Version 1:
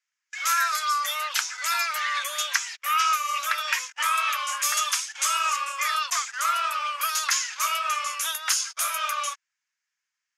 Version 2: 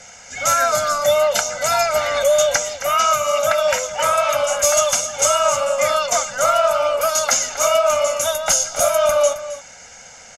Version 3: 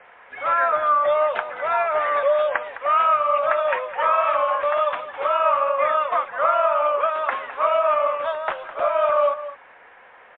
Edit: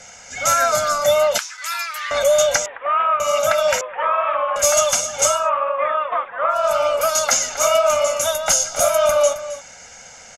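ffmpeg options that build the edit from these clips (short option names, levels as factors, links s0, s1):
-filter_complex "[2:a]asplit=3[s0][s1][s2];[1:a]asplit=5[s3][s4][s5][s6][s7];[s3]atrim=end=1.382[s8];[0:a]atrim=start=1.378:end=2.112[s9];[s4]atrim=start=2.108:end=2.662[s10];[s0]atrim=start=2.658:end=3.202[s11];[s5]atrim=start=3.198:end=3.812[s12];[s1]atrim=start=3.808:end=4.562[s13];[s6]atrim=start=4.558:end=5.5[s14];[s2]atrim=start=5.26:end=6.73[s15];[s7]atrim=start=6.49[s16];[s8][s9]acrossfade=d=0.004:c1=hsin:c2=hsin[s17];[s17][s10]acrossfade=d=0.004:c1=hsin:c2=hsin[s18];[s18][s11]acrossfade=d=0.004:c1=hsin:c2=hsin[s19];[s19][s12]acrossfade=d=0.004:c1=hsin:c2=hsin[s20];[s20][s13]acrossfade=d=0.004:c1=hsin:c2=hsin[s21];[s21][s14]acrossfade=d=0.004:c1=hsin:c2=hsin[s22];[s22][s15]acrossfade=d=0.24:c1=tri:c2=tri[s23];[s23][s16]acrossfade=d=0.24:c1=tri:c2=tri"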